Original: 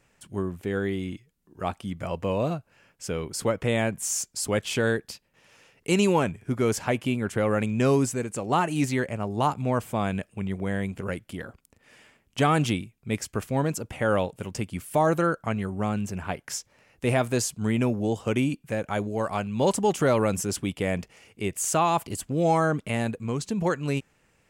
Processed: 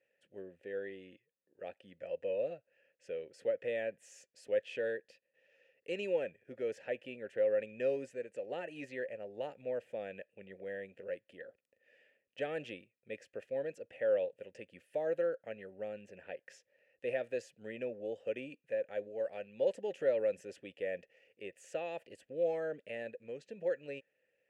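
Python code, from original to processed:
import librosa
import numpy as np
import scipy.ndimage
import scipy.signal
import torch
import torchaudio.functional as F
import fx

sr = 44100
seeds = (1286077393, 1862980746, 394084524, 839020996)

y = fx.vowel_filter(x, sr, vowel='e')
y = y * 10.0 ** (-2.5 / 20.0)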